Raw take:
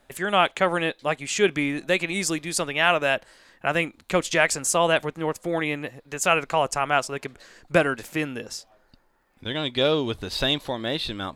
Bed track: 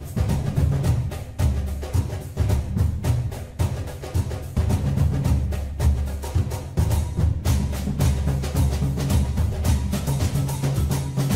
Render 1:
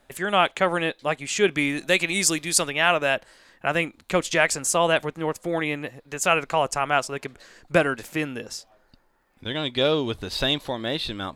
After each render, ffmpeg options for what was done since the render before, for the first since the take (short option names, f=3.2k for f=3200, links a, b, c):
-filter_complex "[0:a]asettb=1/sr,asplit=3[a][b][c];[a]atrim=end=1.574[d];[b]atrim=start=1.57:end=2.7,asetpts=PTS-STARTPTS,afade=t=in:d=0.004:c=qsin,afade=t=out:st=1.126:d=0.004:c=qsin,highshelf=f=2.6k:g=7.5[e];[c]atrim=start=2.696[f];[d][e]acrossfade=d=0.004:c1=hsin:c2=qsin[g];[g][f]acrossfade=d=0.004:c1=qsin:c2=hsin"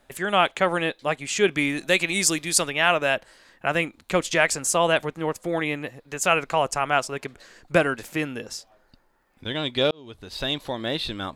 -filter_complex "[0:a]asplit=2[a][b];[a]atrim=end=9.91,asetpts=PTS-STARTPTS,afade=t=out:st=9.906:d=0.004:c=hsin[c];[b]atrim=start=9.91,asetpts=PTS-STARTPTS,afade=t=in:d=0.89[d];[c][d]concat=n=2:v=0:a=1"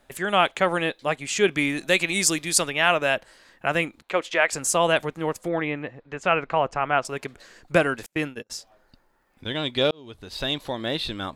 -filter_complex "[0:a]asettb=1/sr,asplit=3[a][b][c];[a]atrim=end=4.024[d];[b]atrim=start=4.02:end=4.53,asetpts=PTS-STARTPTS,afade=t=in:d=0.004:c=qsin,afade=t=out:st=0.506:d=0.004:c=qsin,acrossover=split=330 3700:gain=0.141 1 0.2[e][f][g];[e][f][g]amix=inputs=3:normalize=0[h];[c]atrim=start=4.526[i];[d][h]acrossfade=d=0.004:c1=hsin:c2=qsin[j];[j][i]acrossfade=d=0.004:c1=qsin:c2=hsin,asettb=1/sr,asplit=3[k][l][m];[k]atrim=end=5.484[n];[l]atrim=start=5.48:end=7.05,asetpts=PTS-STARTPTS,afade=t=in:d=0.004:c=qsin,afade=t=out:st=1.566:d=0.004:c=qsin,lowpass=2.5k[o];[m]atrim=start=7.046[p];[n][o]acrossfade=d=0.004:c1=hsin:c2=qsin[q];[q][p]acrossfade=d=0.004:c1=qsin:c2=hsin,asettb=1/sr,asplit=3[r][s][t];[r]atrim=end=8.064[u];[s]atrim=start=8.06:end=8.5,asetpts=PTS-STARTPTS,afade=t=in:d=0.004:c=qsin,afade=t=out:st=0.436:d=0.004:c=qsin,agate=range=-35dB:threshold=-33dB:ratio=16:release=100:detection=peak[v];[t]atrim=start=8.496[w];[u][v]acrossfade=d=0.004:c1=hsin:c2=qsin[x];[x][w]acrossfade=d=0.004:c1=qsin:c2=hsin"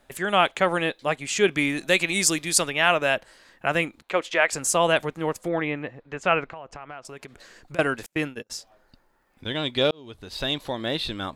-filter_complex "[0:a]asettb=1/sr,asplit=3[a][b][c];[a]atrim=end=6.444[d];[b]atrim=start=6.44:end=7.79,asetpts=PTS-STARTPTS,afade=t=in:d=0.004:c=qsin,afade=t=out:st=1.346:d=0.004:c=qsin,acompressor=threshold=-37dB:ratio=5:attack=3.2:release=140:knee=1:detection=peak[e];[c]atrim=start=7.786[f];[d][e]acrossfade=d=0.004:c1=hsin:c2=qsin[g];[g][f]acrossfade=d=0.004:c1=qsin:c2=hsin"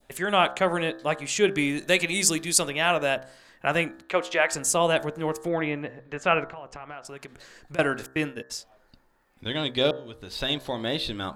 -af "bandreject=f=65.64:t=h:w=4,bandreject=f=131.28:t=h:w=4,bandreject=f=196.92:t=h:w=4,bandreject=f=262.56:t=h:w=4,bandreject=f=328.2:t=h:w=4,bandreject=f=393.84:t=h:w=4,bandreject=f=459.48:t=h:w=4,bandreject=f=525.12:t=h:w=4,bandreject=f=590.76:t=h:w=4,bandreject=f=656.4:t=h:w=4,bandreject=f=722.04:t=h:w=4,bandreject=f=787.68:t=h:w=4,bandreject=f=853.32:t=h:w=4,bandreject=f=918.96:t=h:w=4,bandreject=f=984.6:t=h:w=4,bandreject=f=1.05024k:t=h:w=4,bandreject=f=1.11588k:t=h:w=4,bandreject=f=1.18152k:t=h:w=4,bandreject=f=1.24716k:t=h:w=4,bandreject=f=1.3128k:t=h:w=4,bandreject=f=1.37844k:t=h:w=4,bandreject=f=1.44408k:t=h:w=4,bandreject=f=1.50972k:t=h:w=4,bandreject=f=1.57536k:t=h:w=4,bandreject=f=1.641k:t=h:w=4,bandreject=f=1.70664k:t=h:w=4,bandreject=f=1.77228k:t=h:w=4,bandreject=f=1.83792k:t=h:w=4,adynamicequalizer=threshold=0.0158:dfrequency=1700:dqfactor=0.72:tfrequency=1700:tqfactor=0.72:attack=5:release=100:ratio=0.375:range=2.5:mode=cutabove:tftype=bell"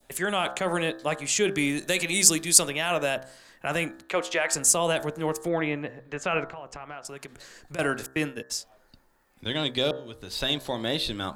-filter_complex "[0:a]acrossover=split=120|5300[a][b][c];[b]alimiter=limit=-15dB:level=0:latency=1:release=20[d];[c]acontrast=46[e];[a][d][e]amix=inputs=3:normalize=0"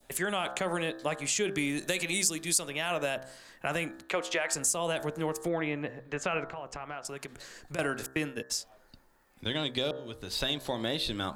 -af "acompressor=threshold=-28dB:ratio=3"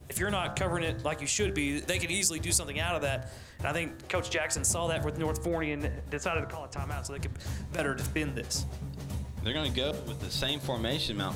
-filter_complex "[1:a]volume=-16dB[a];[0:a][a]amix=inputs=2:normalize=0"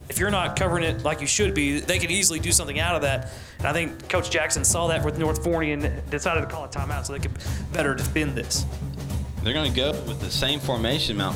-af "volume=7.5dB"